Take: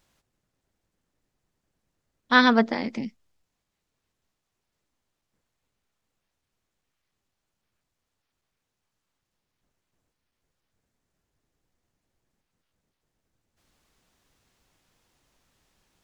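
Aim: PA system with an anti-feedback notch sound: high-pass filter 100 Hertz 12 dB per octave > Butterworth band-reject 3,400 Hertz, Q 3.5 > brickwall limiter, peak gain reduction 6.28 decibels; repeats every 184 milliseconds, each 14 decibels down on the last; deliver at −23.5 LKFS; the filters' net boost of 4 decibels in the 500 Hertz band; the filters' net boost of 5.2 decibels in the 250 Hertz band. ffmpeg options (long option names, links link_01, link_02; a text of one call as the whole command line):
ffmpeg -i in.wav -af "highpass=100,asuperstop=centerf=3400:order=8:qfactor=3.5,equalizer=frequency=250:width_type=o:gain=5,equalizer=frequency=500:width_type=o:gain=3.5,aecho=1:1:184|368:0.2|0.0399,volume=-2dB,alimiter=limit=-9.5dB:level=0:latency=1" out.wav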